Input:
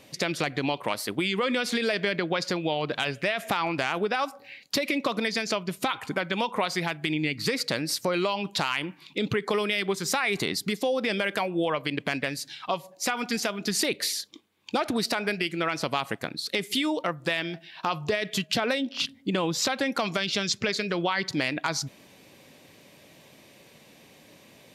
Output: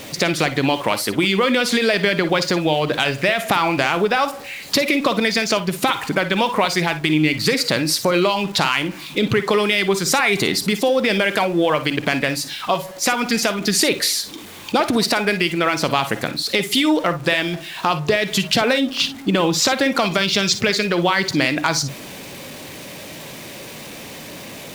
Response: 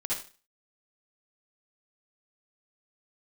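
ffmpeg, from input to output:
-filter_complex "[0:a]aeval=exprs='val(0)+0.5*0.00944*sgn(val(0))':c=same,asplit=2[a][b];[1:a]atrim=start_sample=2205,atrim=end_sample=3087,asetrate=48510,aresample=44100[c];[b][c]afir=irnorm=-1:irlink=0,volume=-11.5dB[d];[a][d]amix=inputs=2:normalize=0,volume=7dB"

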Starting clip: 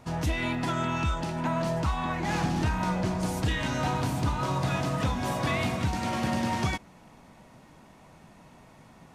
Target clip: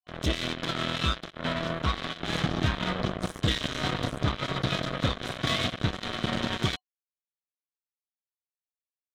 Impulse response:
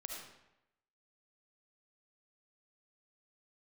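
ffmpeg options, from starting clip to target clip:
-af "afftdn=nr=19:nf=-43,acrusher=bits=3:mix=0:aa=0.5,superequalizer=9b=0.447:13b=2.51"

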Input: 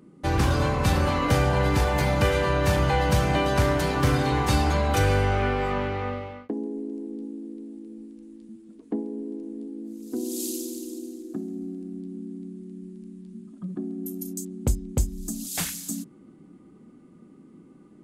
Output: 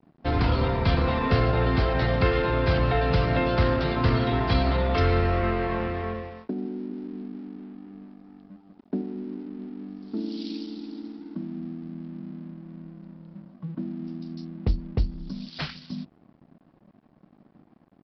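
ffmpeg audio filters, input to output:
-af "adynamicequalizer=threshold=0.00501:dfrequency=940:dqfactor=6.7:tfrequency=940:tqfactor=6.7:attack=5:release=100:ratio=0.375:range=2.5:mode=cutabove:tftype=bell,asetrate=39289,aresample=44100,atempo=1.12246,aresample=11025,aeval=exprs='sgn(val(0))*max(abs(val(0))-0.00237,0)':c=same,aresample=44100"

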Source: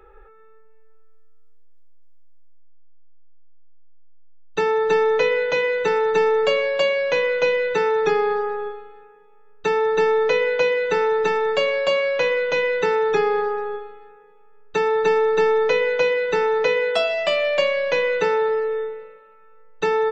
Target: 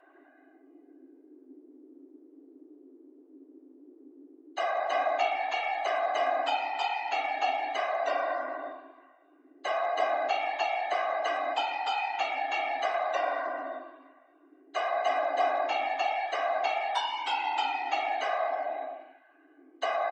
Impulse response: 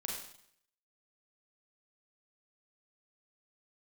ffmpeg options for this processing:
-filter_complex "[0:a]asplit=2[a][b];[b]adelay=160,highpass=300,lowpass=3.4k,asoftclip=type=hard:threshold=-16dB,volume=-24dB[c];[a][c]amix=inputs=2:normalize=0,afftfilt=real='hypot(re,im)*cos(2*PI*random(0))':imag='hypot(re,im)*sin(2*PI*random(1))':win_size=512:overlap=0.75,afreqshift=260,volume=-4dB"

